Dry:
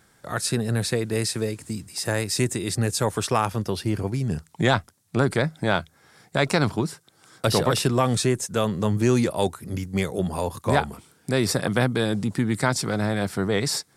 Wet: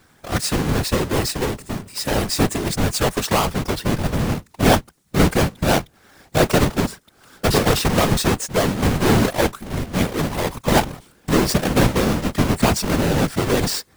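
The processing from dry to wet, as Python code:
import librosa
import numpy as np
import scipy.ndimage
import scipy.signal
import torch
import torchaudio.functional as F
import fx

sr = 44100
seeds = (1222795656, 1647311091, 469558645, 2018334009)

y = fx.halfwave_hold(x, sr)
y = fx.whisperise(y, sr, seeds[0])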